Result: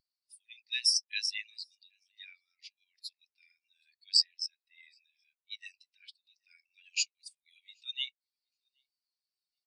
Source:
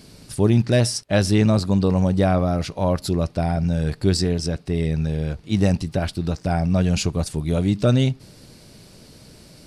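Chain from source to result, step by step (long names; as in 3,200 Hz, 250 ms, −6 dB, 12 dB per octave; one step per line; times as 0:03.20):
Butterworth high-pass 2,000 Hz 36 dB per octave
on a send: repeating echo 774 ms, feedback 32%, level −17 dB
on the sum: every bin expanded away from the loudest bin 2.5 to 1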